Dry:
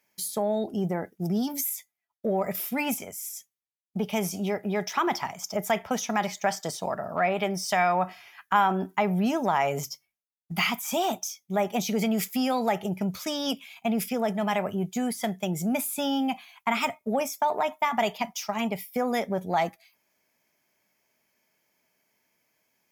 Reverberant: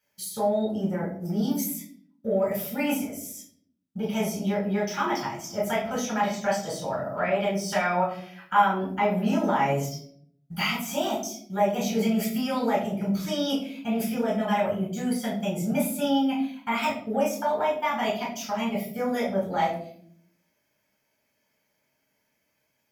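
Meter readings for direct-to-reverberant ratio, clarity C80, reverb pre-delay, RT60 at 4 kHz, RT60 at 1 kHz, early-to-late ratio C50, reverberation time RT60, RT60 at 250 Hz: -6.5 dB, 10.5 dB, 7 ms, 0.40 s, 0.50 s, 6.0 dB, 0.60 s, 1.0 s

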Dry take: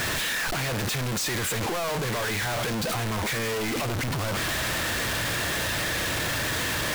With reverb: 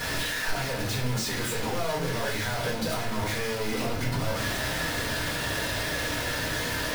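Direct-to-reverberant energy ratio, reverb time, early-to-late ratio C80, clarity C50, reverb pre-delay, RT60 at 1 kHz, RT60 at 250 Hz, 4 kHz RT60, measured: -4.5 dB, 0.60 s, 10.5 dB, 6.5 dB, 4 ms, 0.50 s, 0.90 s, 0.40 s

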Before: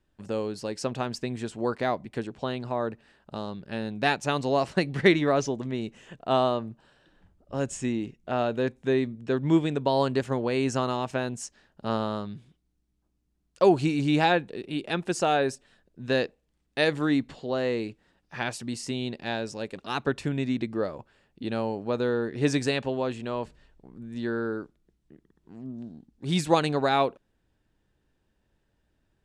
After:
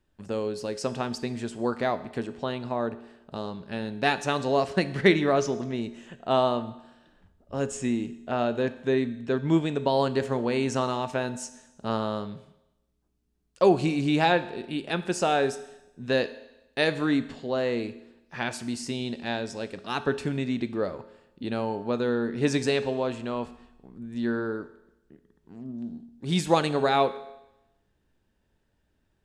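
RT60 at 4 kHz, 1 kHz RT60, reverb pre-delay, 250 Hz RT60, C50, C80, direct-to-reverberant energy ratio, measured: 0.90 s, 0.90 s, 4 ms, 0.95 s, 14.5 dB, 16.5 dB, 11.0 dB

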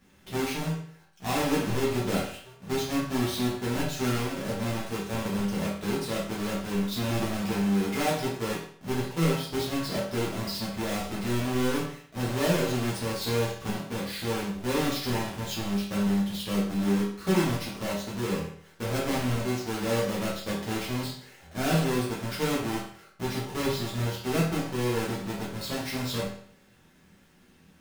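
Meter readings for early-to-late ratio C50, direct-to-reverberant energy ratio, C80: 3.0 dB, -7.0 dB, 7.5 dB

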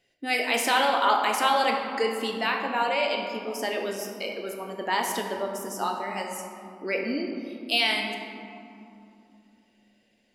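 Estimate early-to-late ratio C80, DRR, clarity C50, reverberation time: 5.0 dB, 1.0 dB, 4.0 dB, 2.8 s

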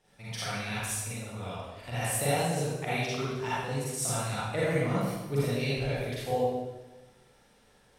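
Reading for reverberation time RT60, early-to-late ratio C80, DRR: 1.1 s, -1.5 dB, -9.5 dB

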